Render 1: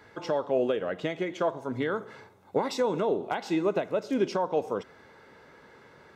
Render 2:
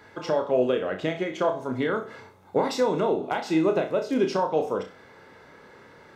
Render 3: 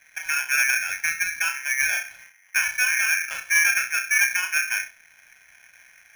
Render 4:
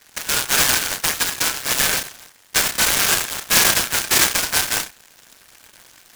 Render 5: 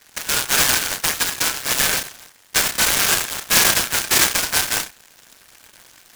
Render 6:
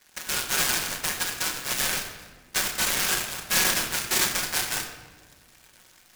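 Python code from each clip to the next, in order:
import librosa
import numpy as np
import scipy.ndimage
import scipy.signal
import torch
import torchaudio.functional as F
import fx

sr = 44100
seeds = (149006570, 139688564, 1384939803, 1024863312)

y1 = fx.room_flutter(x, sr, wall_m=5.4, rt60_s=0.29)
y1 = F.gain(torch.from_numpy(y1), 2.5).numpy()
y2 = scipy.signal.lfilter(np.full(54, 1.0 / 54), 1.0, y1)
y2 = fx.leveller(y2, sr, passes=1)
y2 = y2 * np.sign(np.sin(2.0 * np.pi * 2000.0 * np.arange(len(y2)) / sr))
y2 = F.gain(torch.from_numpy(y2), 3.5).numpy()
y3 = scipy.signal.sosfilt(scipy.signal.butter(2, 5000.0, 'lowpass', fs=sr, output='sos'), y2)
y3 = fx.noise_mod_delay(y3, sr, seeds[0], noise_hz=4200.0, depth_ms=0.14)
y3 = F.gain(torch.from_numpy(y3), 5.0).numpy()
y4 = y3
y5 = fx.room_shoebox(y4, sr, seeds[1], volume_m3=1300.0, walls='mixed', distance_m=1.0)
y5 = F.gain(torch.from_numpy(y5), -8.5).numpy()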